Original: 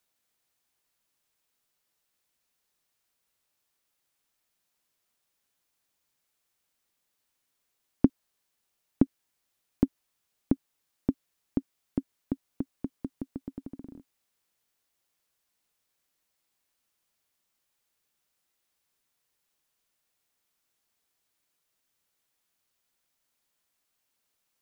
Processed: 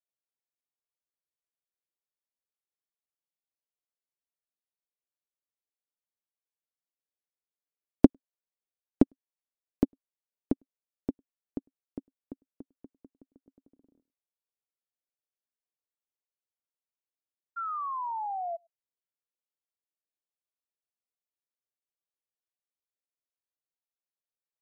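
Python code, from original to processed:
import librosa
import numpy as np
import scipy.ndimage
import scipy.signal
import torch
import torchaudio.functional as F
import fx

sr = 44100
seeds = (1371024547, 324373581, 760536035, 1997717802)

y = fx.tracing_dist(x, sr, depth_ms=0.17)
y = fx.peak_eq(y, sr, hz=510.0, db=11.5, octaves=1.5)
y = fx.spec_paint(y, sr, seeds[0], shape='fall', start_s=17.56, length_s=1.01, low_hz=660.0, high_hz=1400.0, level_db=-20.0)
y = y + 10.0 ** (-19.5 / 20.0) * np.pad(y, (int(102 * sr / 1000.0), 0))[:len(y)]
y = fx.upward_expand(y, sr, threshold_db=-29.0, expansion=2.5)
y = y * 10.0 ** (-1.0 / 20.0)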